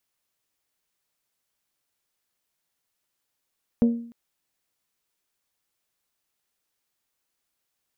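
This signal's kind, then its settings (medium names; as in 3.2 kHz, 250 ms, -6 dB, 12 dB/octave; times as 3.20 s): glass hit bell, length 0.30 s, lowest mode 234 Hz, decay 0.56 s, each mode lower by 10 dB, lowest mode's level -13 dB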